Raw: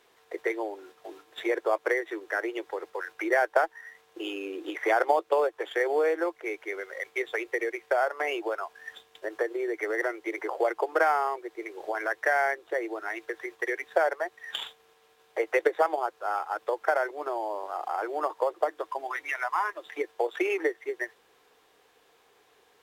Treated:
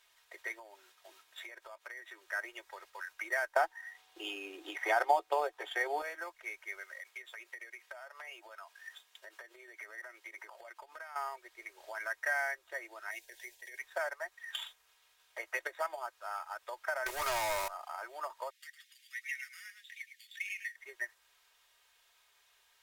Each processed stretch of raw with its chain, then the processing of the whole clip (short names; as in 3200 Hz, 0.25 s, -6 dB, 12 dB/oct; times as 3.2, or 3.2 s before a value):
0.59–2.26 HPF 71 Hz + compressor, threshold -34 dBFS
3.56–6.02 bell 3400 Hz +4.5 dB 0.98 oct + notch 460 Hz, Q 11 + small resonant body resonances 300/430/740 Hz, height 15 dB, ringing for 35 ms
6.84–11.16 HPF 170 Hz + compressor, threshold -35 dBFS
13.11–13.79 high shelf 4800 Hz +5.5 dB + negative-ratio compressor -34 dBFS + fixed phaser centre 510 Hz, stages 4
17.06–17.68 high shelf 4600 Hz +10 dB + sample leveller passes 5
18.5–20.76 elliptic high-pass 1900 Hz, stop band 50 dB + echo 0.107 s -10 dB
whole clip: passive tone stack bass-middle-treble 10-0-10; comb 3.2 ms, depth 59%; dynamic EQ 3300 Hz, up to -5 dB, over -53 dBFS, Q 1.4; gain -1 dB